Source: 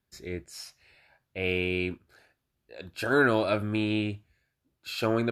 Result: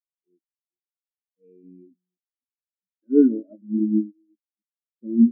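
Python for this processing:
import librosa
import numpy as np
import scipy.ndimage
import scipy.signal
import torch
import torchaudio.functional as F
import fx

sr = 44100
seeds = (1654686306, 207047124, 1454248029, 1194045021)

y = fx.reverse_delay(x, sr, ms=272, wet_db=-9.0)
y = scipy.signal.sosfilt(scipy.signal.butter(2, 180.0, 'highpass', fs=sr, output='sos'), y)
y = fx.peak_eq(y, sr, hz=230.0, db=14.0, octaves=1.3)
y = y + 10.0 ** (-15.0 / 20.0) * np.pad(y, (int(252 * sr / 1000.0), 0))[:len(y)]
y = fx.spectral_expand(y, sr, expansion=4.0)
y = y * librosa.db_to_amplitude(1.5)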